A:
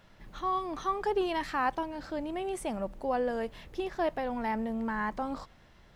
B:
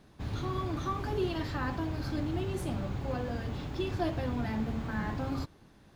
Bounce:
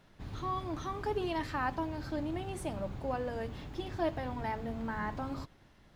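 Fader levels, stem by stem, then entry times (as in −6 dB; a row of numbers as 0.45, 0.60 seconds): −5.0, −7.5 decibels; 0.00, 0.00 seconds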